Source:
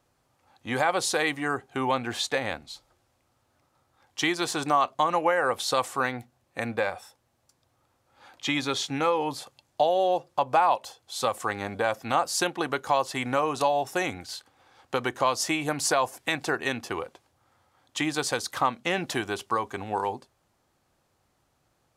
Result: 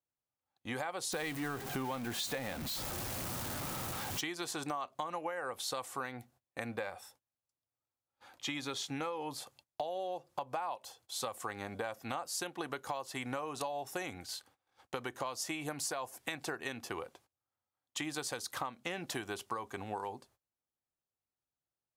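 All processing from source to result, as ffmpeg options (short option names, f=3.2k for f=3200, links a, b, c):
-filter_complex "[0:a]asettb=1/sr,asplit=3[a][b][c];[a]atrim=end=1.124[d];[b]atrim=start=1.12:end=4.21,asetpts=PTS-STARTPTS,afade=t=in:d=0.004:c=qsin,afade=t=out:st=3.086:d=0.004:c=qsin,aeval=exprs='val(0)+0.5*0.0355*sgn(val(0))':c=same,equalizer=f=180:t=o:w=1:g=7[e];[c]atrim=start=4.206[f];[d][e]acrossfade=d=0.004:c1=hsin:c2=qsin[g];[g][f]acrossfade=d=0.004:c1=qsin:c2=hsin,agate=range=-23dB:threshold=-56dB:ratio=16:detection=peak,highshelf=f=11k:g=10,acompressor=threshold=-29dB:ratio=6,volume=-6dB"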